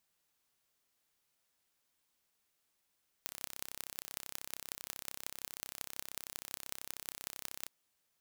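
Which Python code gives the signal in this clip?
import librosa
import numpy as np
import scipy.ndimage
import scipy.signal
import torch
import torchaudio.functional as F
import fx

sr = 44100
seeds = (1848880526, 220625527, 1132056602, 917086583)

y = fx.impulse_train(sr, length_s=4.41, per_s=32.9, accent_every=6, level_db=-11.0)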